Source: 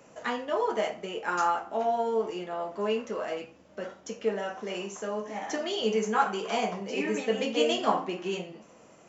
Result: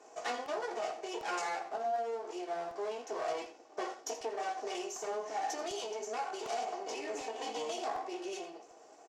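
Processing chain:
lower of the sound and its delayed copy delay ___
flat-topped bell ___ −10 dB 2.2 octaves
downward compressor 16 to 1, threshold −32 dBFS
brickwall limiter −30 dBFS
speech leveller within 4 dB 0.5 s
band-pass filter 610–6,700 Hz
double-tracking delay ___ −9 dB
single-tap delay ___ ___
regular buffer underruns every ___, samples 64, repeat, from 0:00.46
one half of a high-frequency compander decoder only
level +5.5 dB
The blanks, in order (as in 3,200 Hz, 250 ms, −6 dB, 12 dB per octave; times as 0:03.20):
2.7 ms, 2,000 Hz, 17 ms, 83 ms, −16 dB, 0.75 s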